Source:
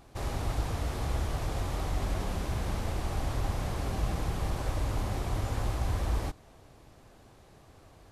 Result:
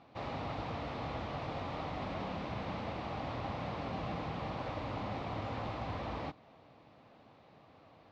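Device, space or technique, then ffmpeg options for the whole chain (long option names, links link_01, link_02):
kitchen radio: -af "highpass=170,equalizer=frequency=380:width_type=q:width=4:gain=-8,equalizer=frequency=1600:width_type=q:width=4:gain=-6,equalizer=frequency=3200:width_type=q:width=4:gain=-3,lowpass=frequency=3800:width=0.5412,lowpass=frequency=3800:width=1.3066"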